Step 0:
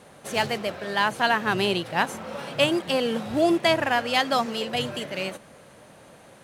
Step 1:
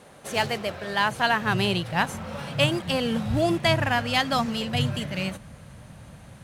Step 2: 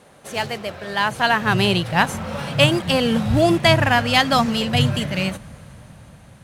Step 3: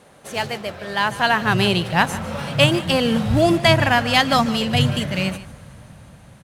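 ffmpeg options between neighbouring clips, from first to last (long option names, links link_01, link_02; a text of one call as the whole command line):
ffmpeg -i in.wav -af "asubboost=boost=11.5:cutoff=120" out.wav
ffmpeg -i in.wav -af "dynaudnorm=framelen=340:gausssize=7:maxgain=11.5dB" out.wav
ffmpeg -i in.wav -af "aecho=1:1:149:0.15" out.wav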